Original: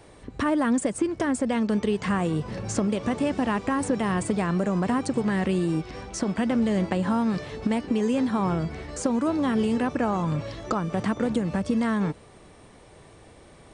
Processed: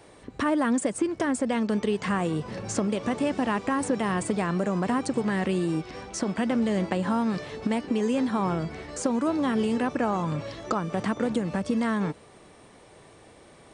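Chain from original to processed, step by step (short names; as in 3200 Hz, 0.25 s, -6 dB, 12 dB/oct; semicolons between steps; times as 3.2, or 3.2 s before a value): low shelf 100 Hz -11 dB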